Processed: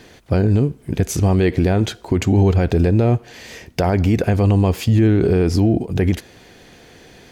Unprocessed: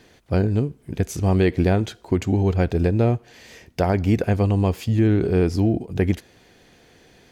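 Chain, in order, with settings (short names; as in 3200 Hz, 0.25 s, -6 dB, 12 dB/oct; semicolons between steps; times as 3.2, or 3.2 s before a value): maximiser +13.5 dB; gain -5.5 dB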